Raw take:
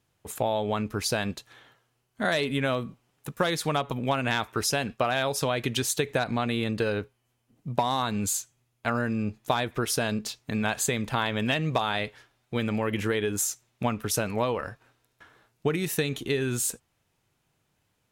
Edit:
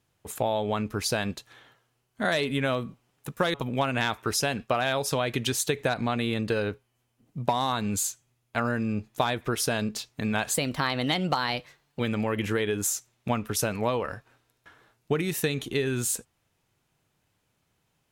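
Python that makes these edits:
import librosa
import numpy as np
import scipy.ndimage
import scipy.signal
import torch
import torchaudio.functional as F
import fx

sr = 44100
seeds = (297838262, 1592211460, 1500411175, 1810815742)

y = fx.edit(x, sr, fx.cut(start_s=3.54, length_s=0.3),
    fx.speed_span(start_s=10.84, length_s=1.7, speed=1.17), tone=tone)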